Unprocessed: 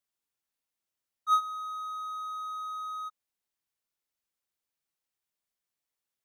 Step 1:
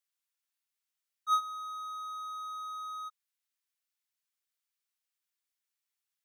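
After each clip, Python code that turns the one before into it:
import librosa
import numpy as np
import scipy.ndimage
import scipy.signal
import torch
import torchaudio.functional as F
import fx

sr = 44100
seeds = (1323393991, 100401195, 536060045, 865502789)

y = scipy.signal.sosfilt(scipy.signal.butter(2, 1300.0, 'highpass', fs=sr, output='sos'), x)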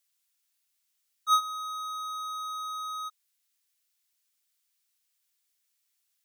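y = fx.high_shelf(x, sr, hz=2000.0, db=11.0)
y = y * 10.0 ** (1.0 / 20.0)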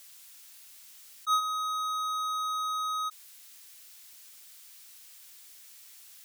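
y = fx.env_flatten(x, sr, amount_pct=50)
y = y * 10.0 ** (-4.0 / 20.0)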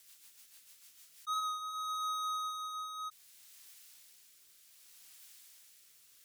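y = fx.rotary_switch(x, sr, hz=6.7, then_hz=0.65, switch_at_s=0.88)
y = y * 10.0 ** (-3.5 / 20.0)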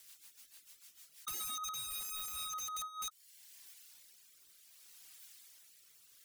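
y = (np.mod(10.0 ** (37.5 / 20.0) * x + 1.0, 2.0) - 1.0) / 10.0 ** (37.5 / 20.0)
y = fx.dereverb_blind(y, sr, rt60_s=1.0)
y = y * 10.0 ** (2.0 / 20.0)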